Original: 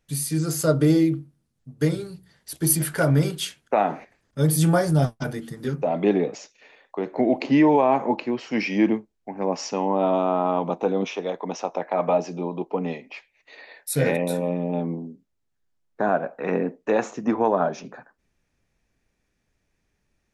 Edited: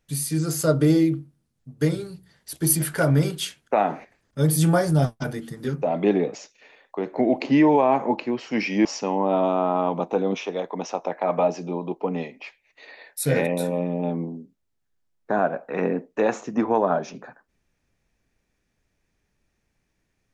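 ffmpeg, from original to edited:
-filter_complex "[0:a]asplit=2[a][b];[a]atrim=end=8.852[c];[b]atrim=start=9.548[d];[c][d]acrossfade=d=0.004:c1=hsin:c2=hsin"

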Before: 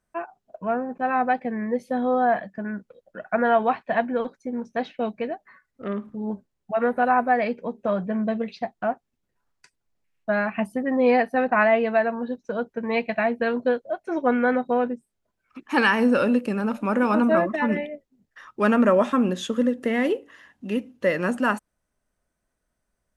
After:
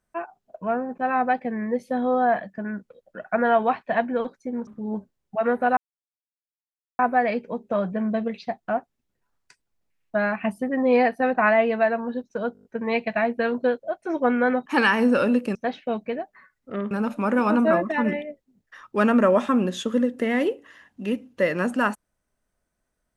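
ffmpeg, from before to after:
-filter_complex "[0:a]asplit=12[a][b][c][d][e][f][g][h][i][j][k][l];[a]atrim=end=4.672[m];[b]atrim=start=6.028:end=7.13,asetpts=PTS-STARTPTS,afade=t=out:st=1.098:d=0.004:c=hsin,apad=pad_dur=1.22[n];[c]atrim=start=7.13:end=12.692,asetpts=PTS-STARTPTS,afade=t=in:d=0.004:c=hsin[o];[d]atrim=start=12.668:end=12.692[p];[e]atrim=start=12.668:end=12.692[q];[f]atrim=start=12.668:end=12.692[r];[g]atrim=start=12.668:end=12.692[s];[h]atrim=start=12.668:end=12.692[t];[i]atrim=start=12.668:end=14.682[u];[j]atrim=start=15.658:end=16.552[v];[k]atrim=start=4.668:end=6.032[w];[l]atrim=start=16.548[x];[n][o]concat=n=2:v=0:a=1[y];[m][y]acrossfade=d=0.004:c1=hsin:c2=hsin[z];[z][p]acrossfade=d=0.004:c1=hsin:c2=hsin[aa];[aa][q]acrossfade=d=0.004:c1=hsin:c2=hsin[ab];[ab][r]acrossfade=d=0.004:c1=hsin:c2=hsin[ac];[ac][s]acrossfade=d=0.004:c1=hsin:c2=hsin[ad];[ad][t]acrossfade=d=0.004:c1=hsin:c2=hsin[ae];[ae][u]acrossfade=d=0.004:c1=hsin:c2=hsin[af];[af][v]acrossfade=d=0.004:c1=hsin:c2=hsin[ag];[ag][w]acrossfade=d=0.004:c1=hsin:c2=hsin[ah];[ah][x]acrossfade=d=0.004:c1=hsin:c2=hsin"

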